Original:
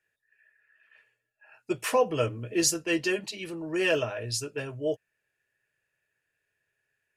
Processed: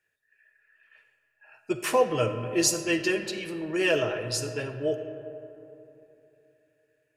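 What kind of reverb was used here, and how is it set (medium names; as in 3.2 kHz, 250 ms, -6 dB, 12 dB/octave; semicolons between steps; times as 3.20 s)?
algorithmic reverb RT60 3.1 s, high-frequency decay 0.4×, pre-delay 10 ms, DRR 8 dB; trim +1 dB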